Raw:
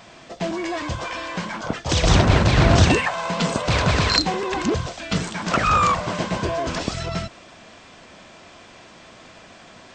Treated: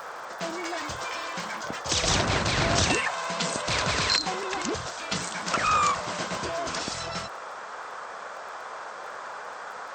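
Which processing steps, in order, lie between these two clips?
noise in a band 430–1,500 Hz −33 dBFS
spectral tilt +2.5 dB per octave
surface crackle 120 per second −32 dBFS, from 0:02.23 11 per second
parametric band 3,000 Hz −2.5 dB
every ending faded ahead of time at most 150 dB per second
level −5.5 dB

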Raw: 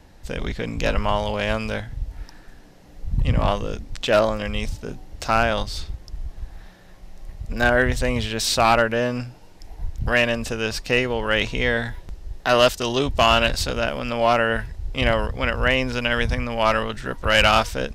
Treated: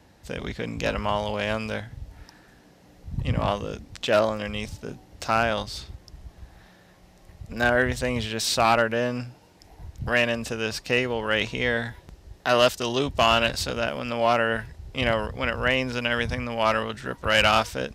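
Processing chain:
high-pass filter 76 Hz 12 dB per octave
level −3 dB

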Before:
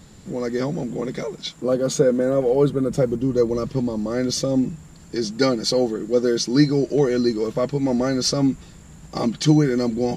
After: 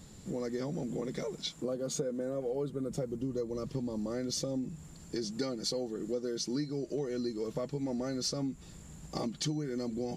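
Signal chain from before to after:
downward compressor 6 to 1, threshold −26 dBFS, peak gain reduction 15 dB
drawn EQ curve 460 Hz 0 dB, 1,600 Hz −3 dB, 8,300 Hz +3 dB
level −6 dB

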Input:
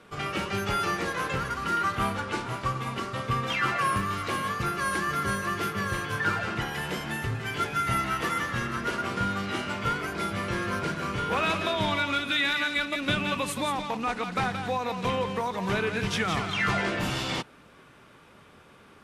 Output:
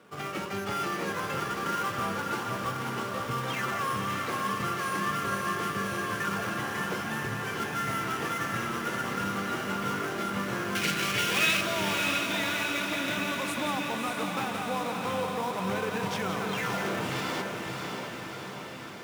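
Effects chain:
in parallel at −5 dB: sample-rate reduction 4,300 Hz, jitter 20%
on the sum: high-pass filter 140 Hz 12 dB per octave
brickwall limiter −17.5 dBFS, peak gain reduction 6.5 dB
0:10.75–0:11.61: high shelf with overshoot 1,600 Hz +12.5 dB, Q 1.5
feedback delay with all-pass diffusion 610 ms, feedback 66%, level −4 dB
level −5.5 dB

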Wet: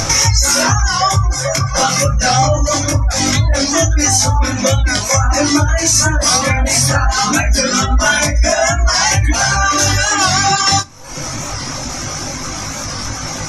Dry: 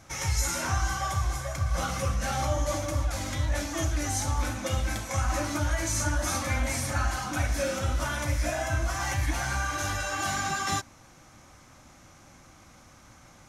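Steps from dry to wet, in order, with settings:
upward compression, threshold −28 dBFS
0:01.53–0:02.05: parametric band 67 Hz −15 dB 0.85 octaves
gate on every frequency bin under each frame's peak −30 dB strong
reverb reduction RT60 1.5 s
downward compressor 3 to 1, threshold −30 dBFS, peak gain reduction 6 dB
parametric band 5,500 Hz +10 dB 0.48 octaves
convolution reverb RT60 0.25 s, pre-delay 7 ms, DRR 12.5 dB
chorus effect 0.23 Hz, delay 19.5 ms, depth 2.1 ms
0:07.07–0:09.10: comb filter 4.7 ms, depth 71%
boost into a limiter +23 dB
wow of a warped record 45 rpm, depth 100 cents
level −1 dB

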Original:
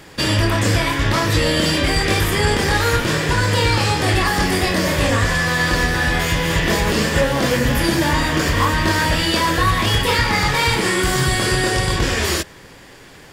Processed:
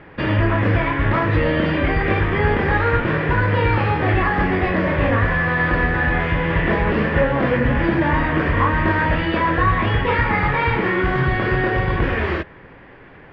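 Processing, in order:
low-pass filter 2,300 Hz 24 dB per octave

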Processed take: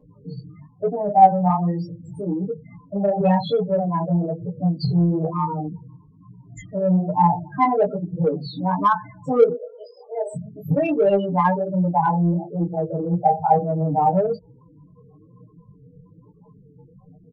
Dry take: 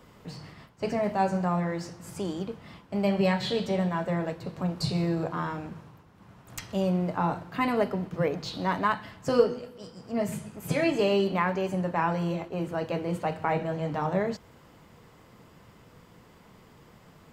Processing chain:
0:09.54–0:10.35: Butterworth high-pass 410 Hz 48 dB per octave
spectral peaks only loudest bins 8
comb filter 6.7 ms, depth 93%
chorus effect 1.1 Hz, delay 16.5 ms, depth 6.6 ms
in parallel at −6 dB: soft clipping −24.5 dBFS, distortion −11 dB
on the sum: parametric band 810 Hz +13 dB 0.28 octaves
level +4 dB

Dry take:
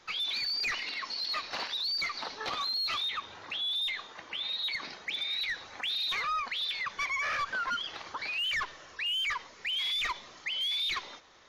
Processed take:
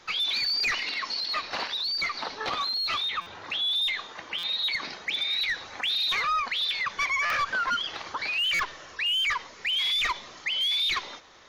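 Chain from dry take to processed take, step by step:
0:01.20–0:03.45: high-shelf EQ 4,500 Hz −5.5 dB
buffer that repeats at 0:03.21/0:04.38/0:07.25/0:08.54, samples 256, times 8
level +5.5 dB

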